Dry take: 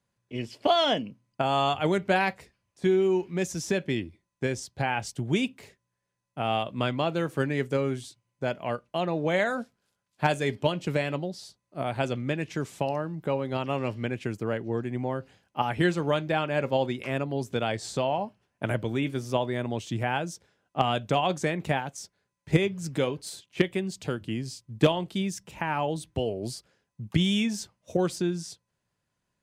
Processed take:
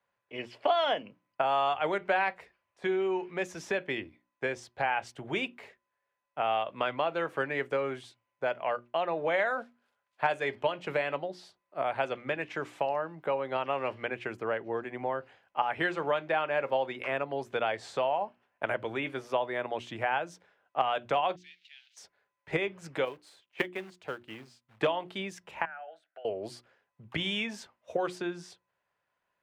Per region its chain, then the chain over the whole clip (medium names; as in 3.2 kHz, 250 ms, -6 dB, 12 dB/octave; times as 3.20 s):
21.36–21.97 s: jump at every zero crossing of -36 dBFS + inverse Chebyshev high-pass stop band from 1.1 kHz, stop band 60 dB + distance through air 230 m
23.05–24.79 s: short-mantissa float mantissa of 2-bit + upward expansion, over -37 dBFS
25.65–26.25 s: tilt EQ +3.5 dB/octave + compression 10:1, threshold -33 dBFS + two resonant band-passes 1 kHz, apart 1.1 oct
whole clip: three-band isolator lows -18 dB, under 470 Hz, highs -18 dB, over 2.9 kHz; hum notches 60/120/180/240/300/360 Hz; compression 2:1, threshold -32 dBFS; trim +4.5 dB